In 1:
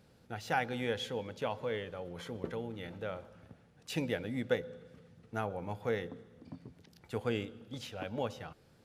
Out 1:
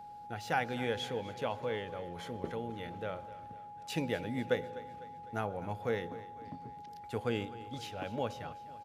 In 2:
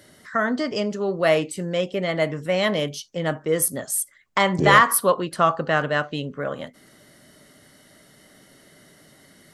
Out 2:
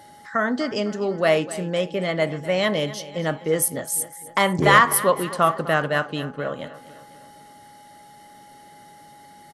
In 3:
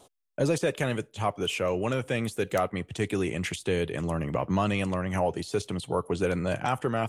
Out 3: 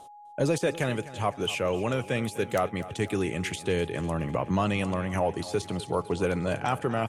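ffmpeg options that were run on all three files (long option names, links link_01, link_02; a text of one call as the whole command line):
ffmpeg -i in.wav -af "aeval=exprs='val(0)+0.00501*sin(2*PI*830*n/s)':channel_layout=same,aecho=1:1:252|504|756|1008|1260:0.15|0.0778|0.0405|0.021|0.0109" out.wav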